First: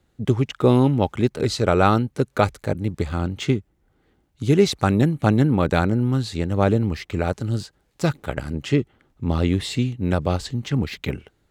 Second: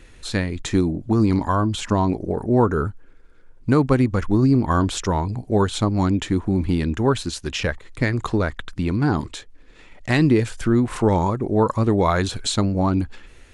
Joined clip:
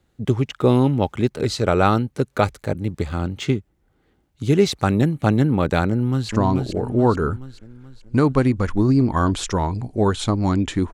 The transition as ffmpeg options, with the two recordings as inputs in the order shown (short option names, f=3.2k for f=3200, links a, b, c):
-filter_complex "[0:a]apad=whole_dur=10.93,atrim=end=10.93,atrim=end=6.292[a];[1:a]atrim=start=1.828:end=6.47[b];[a][b]acrossfade=d=0.004:c1=hsin:c2=hsin,asplit=2[c][d];[d]afade=t=in:st=5.89:d=0.01,afade=t=out:st=6.29:d=0.01,aecho=0:1:430|860|1290|1720|2150|2580:0.595662|0.297831|0.148916|0.0744578|0.0372289|0.0186144[e];[c][e]amix=inputs=2:normalize=0"